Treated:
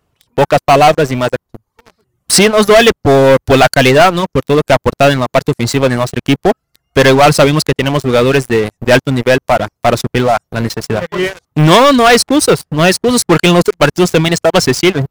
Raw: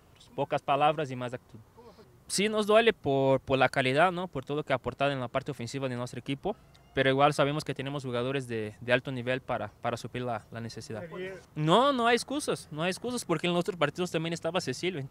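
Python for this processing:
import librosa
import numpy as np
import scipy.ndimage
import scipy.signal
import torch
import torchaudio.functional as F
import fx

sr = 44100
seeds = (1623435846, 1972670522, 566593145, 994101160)

y = fx.dereverb_blind(x, sr, rt60_s=0.93)
y = fx.leveller(y, sr, passes=5)
y = y * 10.0 ** (6.0 / 20.0)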